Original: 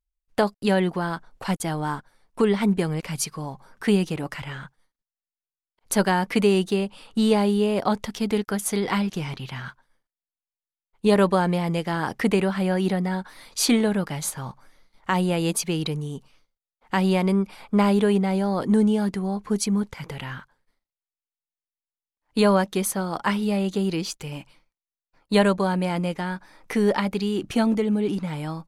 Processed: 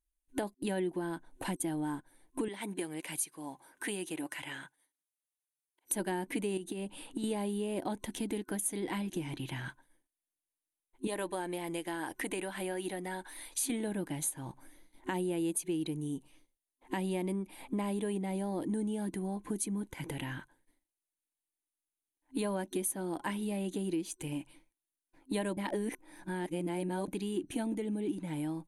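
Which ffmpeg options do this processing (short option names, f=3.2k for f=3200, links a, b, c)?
-filter_complex "[0:a]asettb=1/sr,asplit=3[a][b][c];[a]atrim=end=2.484[d];[b]atrim=start=2.48:end=5.93,asetpts=PTS-STARTPTS,afade=t=in:d=0.004:c=qsin,afade=t=out:st=3.446:d=0.004:c=qsin,highpass=f=880:p=1[e];[c]atrim=start=5.926[f];[d][e]acrossfade=d=0.004:c1=hsin:c2=qsin[g];[g][f]acrossfade=d=0.004:c1=qsin:c2=hsin,asettb=1/sr,asplit=3[h][i][j];[h]atrim=end=6.574[k];[i]atrim=start=6.57:end=7.24,asetpts=PTS-STARTPTS,afade=t=in:d=0.004:c=qsin,afade=t=out:st=0.666:d=0.004:c=qsin,acompressor=threshold=-26dB:ratio=10:attack=3.2:release=140:knee=1:detection=peak[l];[j]atrim=start=7.236[m];[k][l]acrossfade=d=0.004:c1=hsin:c2=qsin[n];[n][m]acrossfade=d=0.004:c1=qsin:c2=hsin,asettb=1/sr,asplit=3[o][p][q];[o]atrim=end=11.074[r];[p]atrim=start=11.07:end=13.7,asetpts=PTS-STARTPTS,afade=t=in:d=0.004:c=qsin,afade=t=out:st=2.626:d=0.004:c=qsin,equalizer=f=170:w=0.5:g=-13[s];[q]atrim=start=13.696[t];[r][s]acrossfade=d=0.004:c1=hsin:c2=qsin[u];[u][t]acrossfade=d=0.004:c1=qsin:c2=hsin,asettb=1/sr,asplit=3[v][w][x];[v]atrim=end=15.974[y];[w]atrim=start=15.97:end=18.66,asetpts=PTS-STARTPTS,afade=t=in:d=0.004:c=qsin,afade=t=out:st=2.686:d=0.004:c=qsin,bandreject=f=1.5k:w=12[z];[x]atrim=start=18.656[aa];[y][z]acrossfade=d=0.004:c1=hsin:c2=qsin[ab];[ab][aa]acrossfade=d=0.004:c1=qsin:c2=hsin,asplit=3[ac][ad][ae];[ac]atrim=end=25.572[af];[ad]atrim=start=25.568:end=27.082,asetpts=PTS-STARTPTS,areverse[ag];[ae]atrim=start=27.078[ah];[af][ag]acrossfade=d=0.004:c1=hsin:c2=hsin[ai];[ai][ah]acrossfade=d=0.004:c1=hsin:c2=hsin,superequalizer=6b=3.98:10b=0.398:14b=0.447:15b=1.41:16b=3.55,acompressor=threshold=-33dB:ratio=3,volume=-3dB"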